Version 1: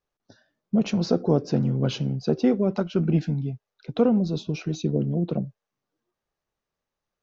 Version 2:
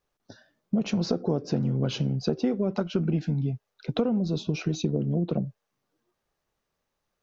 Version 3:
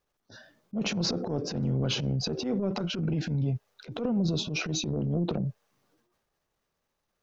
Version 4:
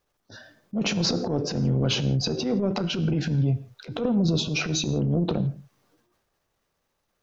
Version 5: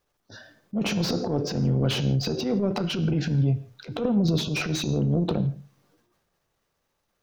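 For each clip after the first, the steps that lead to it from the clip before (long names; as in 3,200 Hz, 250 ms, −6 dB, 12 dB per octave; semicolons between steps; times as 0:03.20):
downward compressor 5 to 1, threshold −28 dBFS, peak gain reduction 12.5 dB; level +5 dB
brickwall limiter −19.5 dBFS, peak gain reduction 6 dB; transient designer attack −11 dB, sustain +8 dB
convolution reverb, pre-delay 5 ms, DRR 13 dB; level +4.5 dB
coupled-rooms reverb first 0.45 s, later 2.1 s, from −26 dB, DRR 18 dB; slew-rate limiting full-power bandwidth 170 Hz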